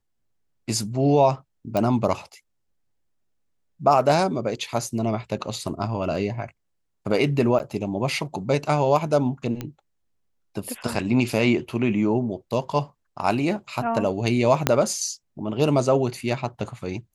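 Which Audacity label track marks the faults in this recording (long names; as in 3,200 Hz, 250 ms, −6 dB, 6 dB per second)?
1.770000	1.770000	click
7.590000	7.600000	drop-out 8.7 ms
9.610000	9.610000	click −16 dBFS
14.670000	14.670000	click −2 dBFS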